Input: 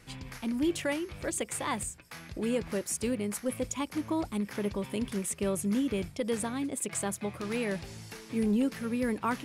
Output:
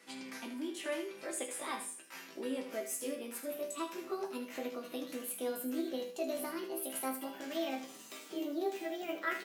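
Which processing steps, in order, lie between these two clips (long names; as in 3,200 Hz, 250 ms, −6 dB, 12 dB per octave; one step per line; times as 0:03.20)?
pitch glide at a constant tempo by +6.5 semitones starting unshifted
Butterworth high-pass 230 Hz 36 dB per octave
in parallel at +1.5 dB: downward compressor, threshold −40 dBFS, peak gain reduction 14.5 dB
on the sum: resonators tuned to a chord C3 major, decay 0.28 s
on a send: repeating echo 77 ms, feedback 28%, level −10 dB
on the sum: level +6 dB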